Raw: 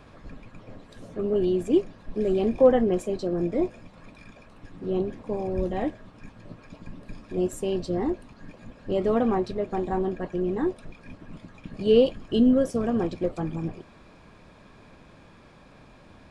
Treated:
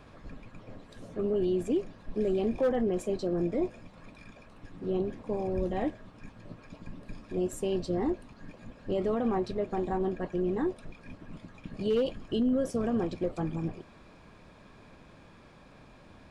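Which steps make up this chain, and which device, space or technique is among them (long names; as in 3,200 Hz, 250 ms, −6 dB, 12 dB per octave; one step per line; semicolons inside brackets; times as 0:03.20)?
clipper into limiter (hard clipping −12 dBFS, distortion −22 dB; brickwall limiter −18.5 dBFS, peak gain reduction 6.5 dB)
level −2.5 dB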